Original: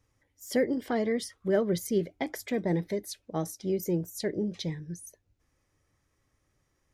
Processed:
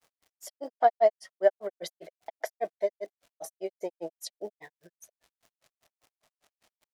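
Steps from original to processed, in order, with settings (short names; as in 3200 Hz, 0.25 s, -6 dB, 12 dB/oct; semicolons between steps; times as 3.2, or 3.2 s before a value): resonant high-pass 670 Hz, resonance Q 7.1; crackle 350/s -50 dBFS; grains 0.102 s, grains 5/s, spray 0.1 s, pitch spread up and down by 0 st; gain +2 dB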